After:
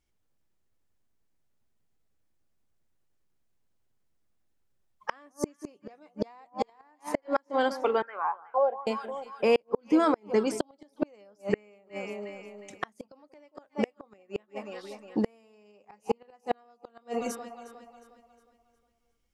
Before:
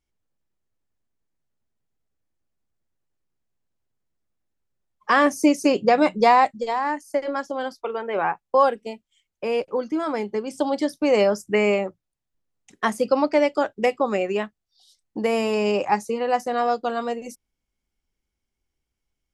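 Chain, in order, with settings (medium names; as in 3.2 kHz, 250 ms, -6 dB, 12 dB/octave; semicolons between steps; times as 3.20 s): echo whose repeats swap between lows and highs 180 ms, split 1 kHz, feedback 63%, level -14 dB; 8.02–8.87 s: auto-wah 630–1800 Hz, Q 6.9, down, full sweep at -13 dBFS; inverted gate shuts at -15 dBFS, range -39 dB; trim +2.5 dB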